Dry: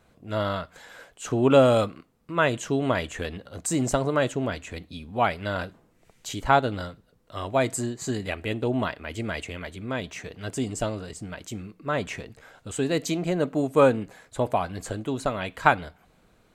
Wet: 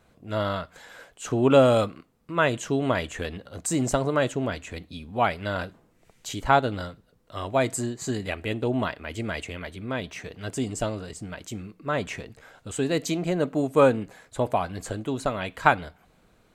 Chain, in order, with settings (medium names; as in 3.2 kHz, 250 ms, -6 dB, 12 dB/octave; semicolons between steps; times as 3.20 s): 9.54–10.22 s: peaking EQ 7.1 kHz -7.5 dB 0.23 oct